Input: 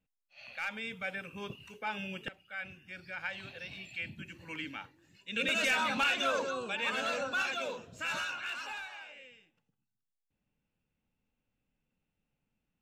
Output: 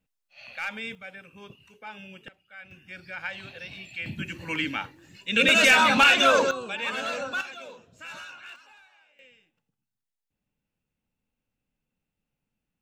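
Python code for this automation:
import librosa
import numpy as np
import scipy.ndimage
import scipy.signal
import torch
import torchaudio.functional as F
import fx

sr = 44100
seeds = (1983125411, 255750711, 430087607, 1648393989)

y = fx.gain(x, sr, db=fx.steps((0.0, 4.5), (0.95, -4.5), (2.71, 4.0), (4.06, 12.0), (6.51, 3.0), (7.41, -5.5), (8.56, -13.0), (9.19, -0.5)))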